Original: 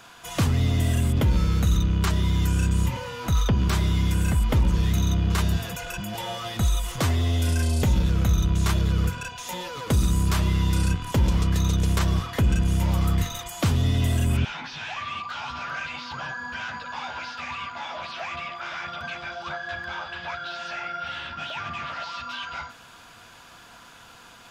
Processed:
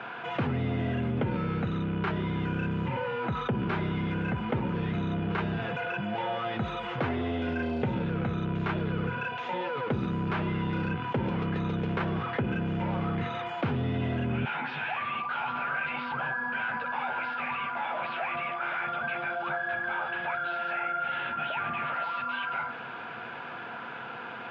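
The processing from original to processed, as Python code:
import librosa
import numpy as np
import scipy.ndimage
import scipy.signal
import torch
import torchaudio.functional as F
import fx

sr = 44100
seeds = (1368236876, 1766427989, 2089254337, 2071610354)

y = fx.cabinet(x, sr, low_hz=150.0, low_slope=24, high_hz=2200.0, hz=(180.0, 290.0, 620.0, 1100.0, 1900.0), db=(-9, -7, -5, -8, -6))
y = fx.env_flatten(y, sr, amount_pct=50)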